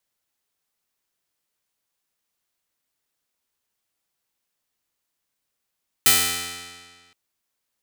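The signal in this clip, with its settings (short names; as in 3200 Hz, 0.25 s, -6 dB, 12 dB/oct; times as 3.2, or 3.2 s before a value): plucked string F2, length 1.07 s, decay 1.70 s, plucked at 0.16, bright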